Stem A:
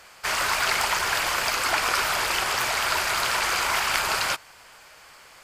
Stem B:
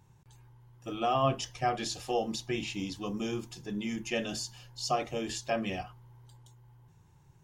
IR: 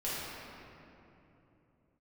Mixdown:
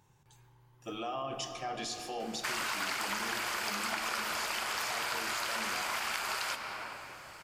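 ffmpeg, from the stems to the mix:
-filter_complex "[0:a]adelay=2200,volume=-3.5dB,asplit=2[link_01][link_02];[link_02]volume=-10.5dB[link_03];[1:a]alimiter=level_in=4dB:limit=-24dB:level=0:latency=1:release=16,volume=-4dB,volume=0.5dB,asplit=2[link_04][link_05];[link_05]volume=-10dB[link_06];[2:a]atrim=start_sample=2205[link_07];[link_03][link_06]amix=inputs=2:normalize=0[link_08];[link_08][link_07]afir=irnorm=-1:irlink=0[link_09];[link_01][link_04][link_09]amix=inputs=3:normalize=0,lowshelf=frequency=240:gain=-10,aeval=exprs='0.531*(cos(1*acos(clip(val(0)/0.531,-1,1)))-cos(1*PI/2))+0.0119*(cos(7*acos(clip(val(0)/0.531,-1,1)))-cos(7*PI/2))':channel_layout=same,acompressor=threshold=-33dB:ratio=4"

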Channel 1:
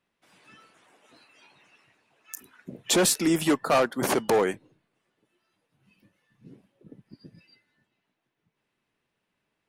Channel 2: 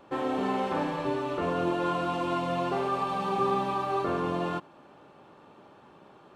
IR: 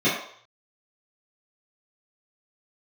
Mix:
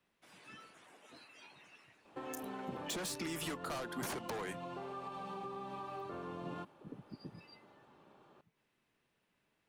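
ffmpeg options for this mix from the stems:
-filter_complex "[0:a]acrossover=split=850|6100[link_01][link_02][link_03];[link_01]acompressor=threshold=-35dB:ratio=4[link_04];[link_02]acompressor=threshold=-31dB:ratio=4[link_05];[link_03]acompressor=threshold=-36dB:ratio=4[link_06];[link_04][link_05][link_06]amix=inputs=3:normalize=0,asoftclip=type=tanh:threshold=-29.5dB,volume=-0.5dB[link_07];[1:a]acompressor=threshold=-31dB:ratio=6,adelay=2050,volume=-9.5dB[link_08];[link_07][link_08]amix=inputs=2:normalize=0,acrossover=split=180[link_09][link_10];[link_10]acompressor=threshold=-40dB:ratio=3[link_11];[link_09][link_11]amix=inputs=2:normalize=0"

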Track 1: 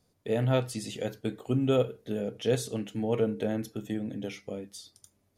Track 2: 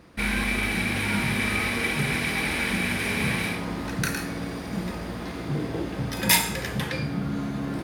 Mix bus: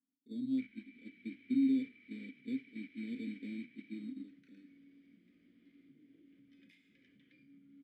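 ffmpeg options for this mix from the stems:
ffmpeg -i stem1.wav -i stem2.wav -filter_complex "[0:a]bandpass=frequency=240:width_type=q:width=2.9:csg=0,acrusher=samples=11:mix=1:aa=0.000001,acontrast=73,volume=-4dB[link_01];[1:a]highshelf=frequency=6700:gain=-7.5,acompressor=threshold=-29dB:ratio=6,adelay=400,volume=-13dB[link_02];[link_01][link_02]amix=inputs=2:normalize=0,agate=range=-8dB:threshold=-35dB:ratio=16:detection=peak,asplit=3[link_03][link_04][link_05];[link_03]bandpass=frequency=270:width_type=q:width=8,volume=0dB[link_06];[link_04]bandpass=frequency=2290:width_type=q:width=8,volume=-6dB[link_07];[link_05]bandpass=frequency=3010:width_type=q:width=8,volume=-9dB[link_08];[link_06][link_07][link_08]amix=inputs=3:normalize=0" out.wav

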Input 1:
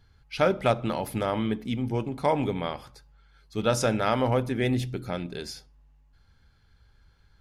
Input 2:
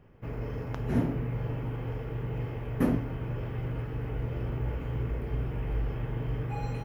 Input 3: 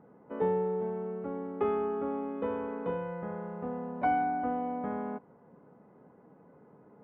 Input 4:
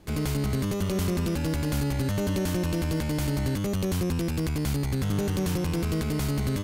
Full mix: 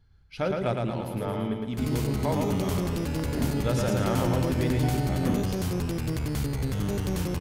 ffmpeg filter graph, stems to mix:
ffmpeg -i stem1.wav -i stem2.wav -i stem3.wav -i stem4.wav -filter_complex "[0:a]lowshelf=frequency=390:gain=7.5,volume=-8.5dB,asplit=2[link_01][link_02];[link_02]volume=-3.5dB[link_03];[1:a]adelay=2450,volume=-2.5dB[link_04];[2:a]adelay=800,volume=-10dB[link_05];[3:a]adelay=1700,volume=-2.5dB[link_06];[link_03]aecho=0:1:112|224|336|448|560|672|784|896:1|0.52|0.27|0.141|0.0731|0.038|0.0198|0.0103[link_07];[link_01][link_04][link_05][link_06][link_07]amix=inputs=5:normalize=0" out.wav

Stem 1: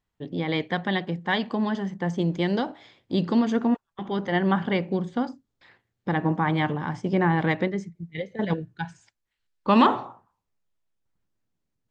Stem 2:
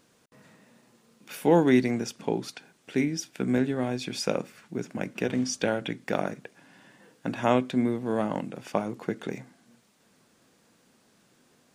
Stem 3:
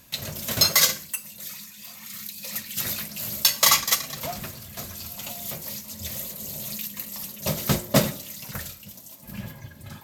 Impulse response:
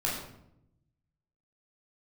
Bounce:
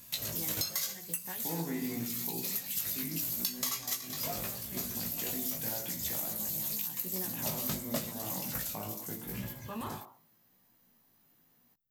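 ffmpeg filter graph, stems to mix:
-filter_complex "[0:a]volume=-11.5dB[link_01];[1:a]aecho=1:1:1:0.32,volume=-10dB,asplit=3[link_02][link_03][link_04];[link_03]volume=-11dB[link_05];[2:a]highshelf=frequency=6100:gain=10,volume=-2.5dB[link_06];[link_04]apad=whole_len=525158[link_07];[link_01][link_07]sidechaincompress=threshold=-51dB:ratio=8:attack=7.3:release=616[link_08];[link_08][link_02]amix=inputs=2:normalize=0,aexciter=amount=8.1:drive=10:freq=12000,alimiter=level_in=4.5dB:limit=-24dB:level=0:latency=1,volume=-4.5dB,volume=0dB[link_09];[3:a]atrim=start_sample=2205[link_10];[link_05][link_10]afir=irnorm=-1:irlink=0[link_11];[link_06][link_09][link_11]amix=inputs=3:normalize=0,flanger=delay=16:depth=3:speed=0.84,acompressor=threshold=-31dB:ratio=10"

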